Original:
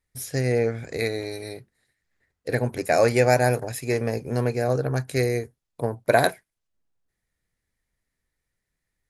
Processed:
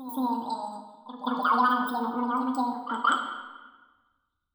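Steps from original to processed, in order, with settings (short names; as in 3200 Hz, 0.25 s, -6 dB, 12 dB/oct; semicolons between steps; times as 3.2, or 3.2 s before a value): spectral contrast raised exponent 1.9; plate-style reverb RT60 2.6 s, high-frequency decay 0.55×, DRR 3.5 dB; speed mistake 7.5 ips tape played at 15 ips; notch 860 Hz, Q 12; de-hum 53.37 Hz, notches 14; reverse echo 0.176 s -12.5 dB; gain -4.5 dB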